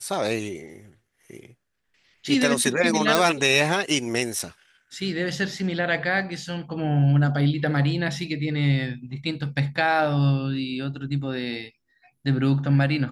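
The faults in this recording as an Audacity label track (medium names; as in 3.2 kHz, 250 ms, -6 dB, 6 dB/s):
3.150000	3.150000	pop
4.390000	4.390000	dropout 3.8 ms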